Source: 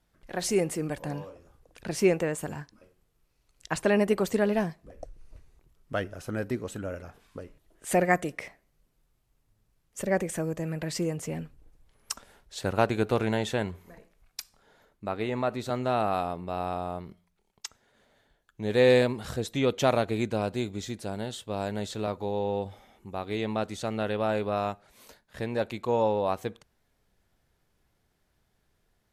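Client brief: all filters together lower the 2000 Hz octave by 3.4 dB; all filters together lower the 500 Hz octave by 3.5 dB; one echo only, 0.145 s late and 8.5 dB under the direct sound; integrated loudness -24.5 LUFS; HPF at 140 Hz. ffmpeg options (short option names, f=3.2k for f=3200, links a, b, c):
-af "highpass=140,equalizer=f=500:t=o:g=-4,equalizer=f=2k:t=o:g=-4,aecho=1:1:145:0.376,volume=7dB"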